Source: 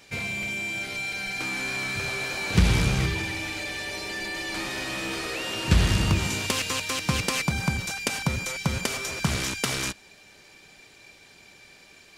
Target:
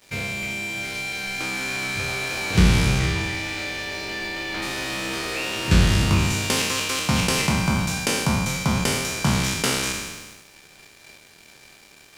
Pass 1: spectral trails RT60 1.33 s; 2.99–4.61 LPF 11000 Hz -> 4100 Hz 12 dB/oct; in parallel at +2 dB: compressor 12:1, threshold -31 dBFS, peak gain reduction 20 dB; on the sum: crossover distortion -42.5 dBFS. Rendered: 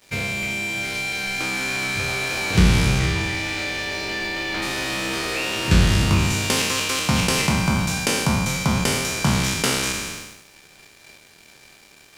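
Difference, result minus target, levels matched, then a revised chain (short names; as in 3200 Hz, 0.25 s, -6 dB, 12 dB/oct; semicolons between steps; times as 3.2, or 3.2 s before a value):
compressor: peak gain reduction -8 dB
spectral trails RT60 1.33 s; 2.99–4.61 LPF 11000 Hz -> 4100 Hz 12 dB/oct; in parallel at +2 dB: compressor 12:1, threshold -39.5 dBFS, peak gain reduction 28 dB; on the sum: crossover distortion -42.5 dBFS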